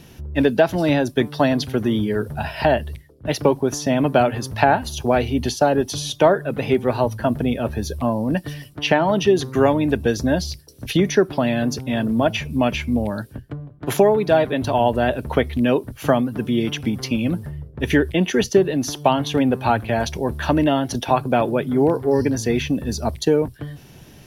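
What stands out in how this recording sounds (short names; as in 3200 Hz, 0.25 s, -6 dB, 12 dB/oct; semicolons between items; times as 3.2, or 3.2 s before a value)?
noise floor -45 dBFS; spectral tilt -5.0 dB/oct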